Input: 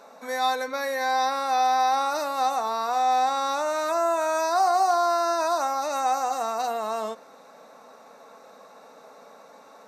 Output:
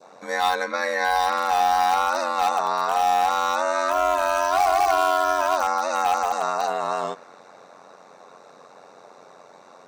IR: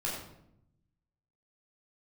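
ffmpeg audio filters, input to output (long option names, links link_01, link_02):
-filter_complex "[0:a]lowpass=frequency=9400:width=0.5412,lowpass=frequency=9400:width=1.3066,asplit=2[link_01][link_02];[link_02]aeval=exprs='(mod(7.5*val(0)+1,2)-1)/7.5':channel_layout=same,volume=-12dB[link_03];[link_01][link_03]amix=inputs=2:normalize=0,aeval=exprs='val(0)*sin(2*PI*45*n/s)':channel_layout=same,adynamicequalizer=threshold=0.0112:dfrequency=1600:dqfactor=0.78:tfrequency=1600:tqfactor=0.78:attack=5:release=100:ratio=0.375:range=2.5:mode=boostabove:tftype=bell,volume=2dB"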